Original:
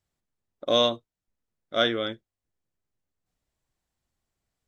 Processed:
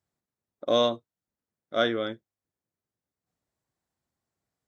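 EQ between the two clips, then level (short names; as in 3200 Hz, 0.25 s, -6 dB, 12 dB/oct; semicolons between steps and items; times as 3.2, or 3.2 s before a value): HPF 100 Hz 12 dB/oct; bell 2900 Hz -5 dB 0.92 oct; high shelf 4000 Hz -4.5 dB; 0.0 dB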